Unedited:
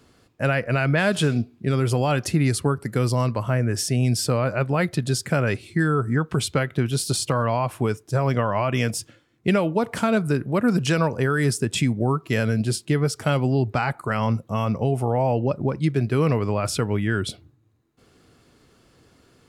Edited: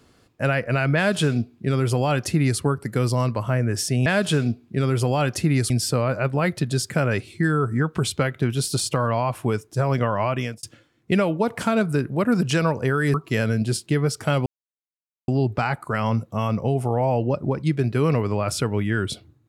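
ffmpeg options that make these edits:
ffmpeg -i in.wav -filter_complex "[0:a]asplit=6[link_01][link_02][link_03][link_04][link_05][link_06];[link_01]atrim=end=4.062[link_07];[link_02]atrim=start=0.958:end=2.602[link_08];[link_03]atrim=start=4.058:end=8.99,asetpts=PTS-STARTPTS,afade=type=out:start_time=4.602:duration=0.33[link_09];[link_04]atrim=start=8.99:end=11.502,asetpts=PTS-STARTPTS,afade=type=in:duration=0.004:curve=hsin[link_10];[link_05]atrim=start=12.128:end=13.45,asetpts=PTS-STARTPTS,afade=type=out:start_time=1.318:duration=0.004:curve=hsin,apad=pad_dur=0.82[link_11];[link_06]atrim=start=13.45,asetpts=PTS-STARTPTS,afade=type=in:duration=0.004:curve=hsin[link_12];[link_07][link_08]acrossfade=duration=0.004:curve1=hsin:curve2=hsin[link_13];[link_09][link_10]concat=n=2:v=0:a=1[link_14];[link_13][link_14]acrossfade=duration=0.004:curve1=hsin:curve2=hsin[link_15];[link_11][link_12]concat=n=2:v=0:a=1[link_16];[link_15][link_16]acrossfade=duration=0.004:curve1=hsin:curve2=hsin" out.wav

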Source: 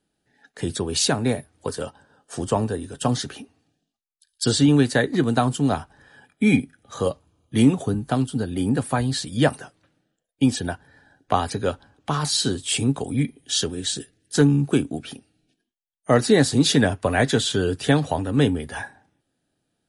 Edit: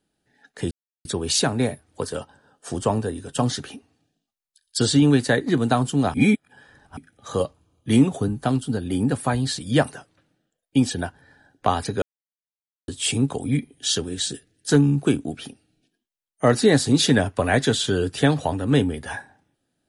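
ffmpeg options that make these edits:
ffmpeg -i in.wav -filter_complex "[0:a]asplit=6[link_01][link_02][link_03][link_04][link_05][link_06];[link_01]atrim=end=0.71,asetpts=PTS-STARTPTS,afade=type=out:start_time=0.706:duration=0.004:curve=hsin,apad=pad_dur=0.34[link_07];[link_02]atrim=start=0.71:end=5.802,asetpts=PTS-STARTPTS,afade=type=in:duration=0.004:curve=hsin[link_08];[link_03]atrim=start=5.798:end=6.632,asetpts=PTS-STARTPTS,areverse[link_09];[link_04]atrim=start=6.628:end=11.68,asetpts=PTS-STARTPTS,afade=type=out:start_time=5.048:duration=0.004:curve=hsin[link_10];[link_05]atrim=start=11.68:end=12.54,asetpts=PTS-STARTPTS,volume=0[link_11];[link_06]atrim=start=12.54,asetpts=PTS-STARTPTS,afade=type=in:duration=0.004:curve=hsin[link_12];[link_07][link_08]concat=n=2:v=0:a=1[link_13];[link_13][link_09]acrossfade=duration=0.004:curve1=hsin:curve2=hsin[link_14];[link_10][link_11][link_12]concat=n=3:v=0:a=1[link_15];[link_14][link_15]acrossfade=duration=0.004:curve1=hsin:curve2=hsin" out.wav

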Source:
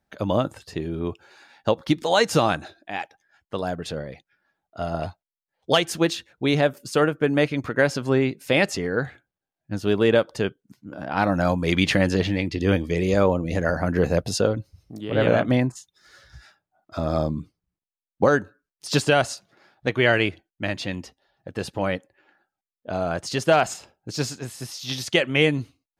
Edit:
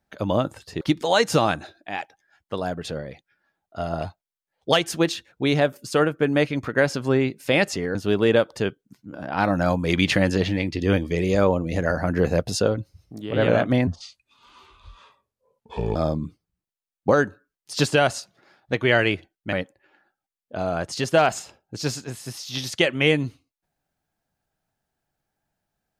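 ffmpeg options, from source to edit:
ffmpeg -i in.wav -filter_complex "[0:a]asplit=6[link_01][link_02][link_03][link_04][link_05][link_06];[link_01]atrim=end=0.812[link_07];[link_02]atrim=start=1.818:end=8.962[link_08];[link_03]atrim=start=9.738:end=15.664[link_09];[link_04]atrim=start=15.66:end=17.1,asetpts=PTS-STARTPTS,asetrate=30429,aresample=44100[link_10];[link_05]atrim=start=17.096:end=20.672[link_11];[link_06]atrim=start=21.868[link_12];[link_07][link_08]acrossfade=duration=0.004:curve1=hsin:curve2=hsin[link_13];[link_13][link_09]acrossfade=duration=0.004:curve1=hsin:curve2=hsin[link_14];[link_14][link_10]acrossfade=duration=0.004:curve1=hsin:curve2=hsin[link_15];[link_15][link_11]acrossfade=duration=0.004:curve1=hsin:curve2=hsin[link_16];[link_16][link_12]acrossfade=duration=0.004:curve1=hsin:curve2=hsin" out.wav

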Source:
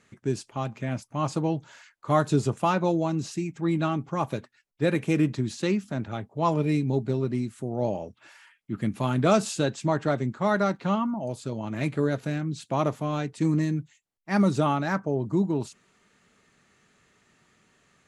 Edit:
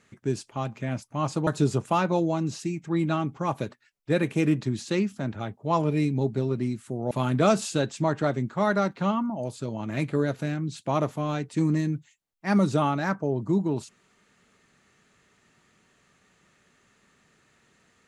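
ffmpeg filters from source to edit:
ffmpeg -i in.wav -filter_complex "[0:a]asplit=3[link_01][link_02][link_03];[link_01]atrim=end=1.472[link_04];[link_02]atrim=start=2.188:end=7.832[link_05];[link_03]atrim=start=8.948[link_06];[link_04][link_05]acrossfade=duration=0.004:curve1=hsin:curve2=hsin[link_07];[link_07][link_06]acrossfade=duration=0.004:curve1=hsin:curve2=hsin" out.wav

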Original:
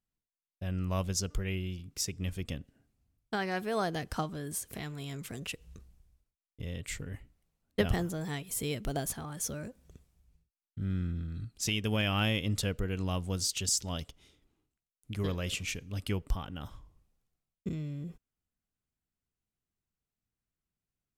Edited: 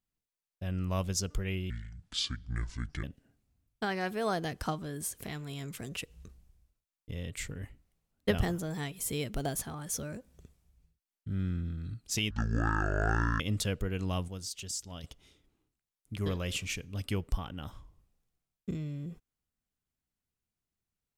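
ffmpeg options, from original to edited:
ffmpeg -i in.wav -filter_complex "[0:a]asplit=7[link_01][link_02][link_03][link_04][link_05][link_06][link_07];[link_01]atrim=end=1.704[link_08];[link_02]atrim=start=1.7:end=2.54,asetpts=PTS-STARTPTS,asetrate=27783,aresample=44100[link_09];[link_03]atrim=start=2.536:end=11.814[link_10];[link_04]atrim=start=11.81:end=12.38,asetpts=PTS-STARTPTS,asetrate=22932,aresample=44100,atrim=end_sample=48340,asetpts=PTS-STARTPTS[link_11];[link_05]atrim=start=12.376:end=13.262[link_12];[link_06]atrim=start=13.258:end=14.022,asetpts=PTS-STARTPTS,volume=-8dB[link_13];[link_07]atrim=start=14.018[link_14];[link_08][link_09]acrossfade=duration=0.004:curve1=hsin:curve2=hsin[link_15];[link_15][link_10]acrossfade=duration=0.004:curve1=hsin:curve2=hsin[link_16];[link_16][link_11]acrossfade=duration=0.004:curve1=hsin:curve2=hsin[link_17];[link_17][link_12]acrossfade=duration=0.004:curve1=hsin:curve2=hsin[link_18];[link_18][link_13]acrossfade=duration=0.004:curve1=hsin:curve2=hsin[link_19];[link_19][link_14]acrossfade=duration=0.004:curve1=hsin:curve2=hsin" out.wav

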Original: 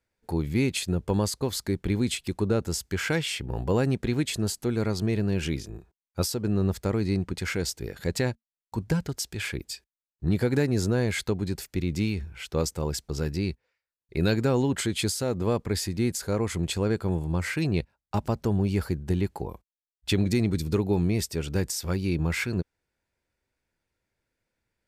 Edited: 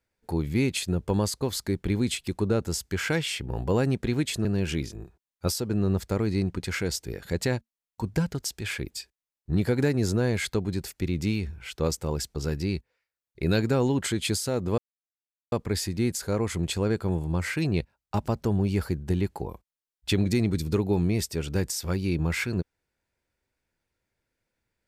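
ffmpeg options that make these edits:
ffmpeg -i in.wav -filter_complex "[0:a]asplit=3[link_01][link_02][link_03];[link_01]atrim=end=4.452[link_04];[link_02]atrim=start=5.188:end=15.52,asetpts=PTS-STARTPTS,afade=type=out:start_time=10.328:duration=0.004:curve=hsin,apad=pad_dur=0.74[link_05];[link_03]atrim=start=15.52,asetpts=PTS-STARTPTS,afade=type=in:duration=0.004:curve=hsin[link_06];[link_05][link_06]concat=n=2:v=0:a=1[link_07];[link_04][link_07]acrossfade=duration=0.004:curve1=hsin:curve2=hsin" out.wav

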